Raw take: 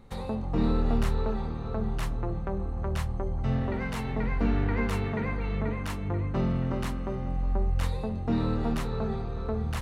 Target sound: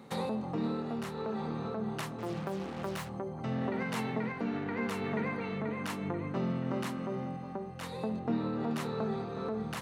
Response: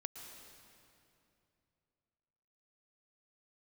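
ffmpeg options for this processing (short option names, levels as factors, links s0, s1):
-filter_complex "[0:a]asplit=3[s0][s1][s2];[s0]afade=t=out:st=2.18:d=0.02[s3];[s1]acrusher=bits=6:mix=0:aa=0.5,afade=t=in:st=2.18:d=0.02,afade=t=out:st=3.08:d=0.02[s4];[s2]afade=t=in:st=3.08:d=0.02[s5];[s3][s4][s5]amix=inputs=3:normalize=0,asettb=1/sr,asplit=3[s6][s7][s8];[s6]atrim=end=8.194[s9];[s7]atrim=start=8.19:end=8.71,asetpts=PTS-STARTPTS,afade=t=in:d=0.004:c=qsin,afade=t=out:st=0.516:d=0.004:c=qsin,lowpass=f=3200:p=1[s10];[s8]atrim=start=8.706[s11];[s9][s10]acrossfade=d=0.004:c1=hsin:c2=qsin[s12];[s12][s11]acrossfade=d=0.004:c1=qsin:c2=hsin,alimiter=level_in=1.5:limit=0.0631:level=0:latency=1:release=392,volume=0.668,highpass=f=150:w=0.5412,highpass=f=150:w=1.3066,volume=1.88"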